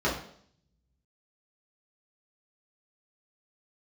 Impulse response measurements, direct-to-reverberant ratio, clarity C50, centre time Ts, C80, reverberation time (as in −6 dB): −7.5 dB, 6.5 dB, 32 ms, 10.5 dB, 0.60 s